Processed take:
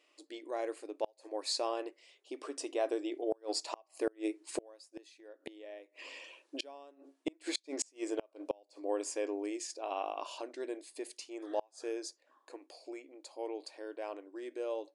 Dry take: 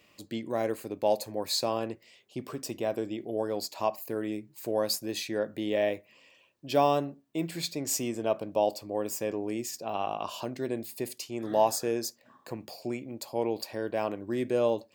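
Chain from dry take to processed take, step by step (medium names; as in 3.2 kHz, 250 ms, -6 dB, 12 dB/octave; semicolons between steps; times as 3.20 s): Doppler pass-by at 5.72 s, 7 m/s, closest 4.2 m; brick-wall FIR band-pass 270–11000 Hz; inverted gate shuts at -33 dBFS, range -33 dB; trim +12 dB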